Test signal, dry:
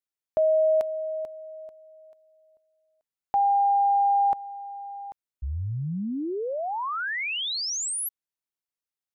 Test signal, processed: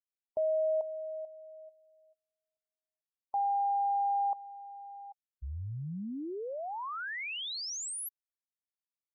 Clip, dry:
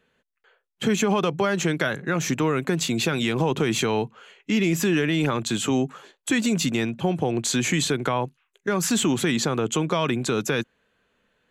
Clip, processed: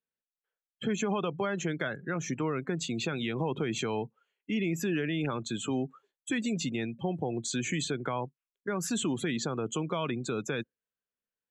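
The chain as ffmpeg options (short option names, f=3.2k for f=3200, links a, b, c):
-af "afftdn=nr=23:nf=-32,volume=-8.5dB"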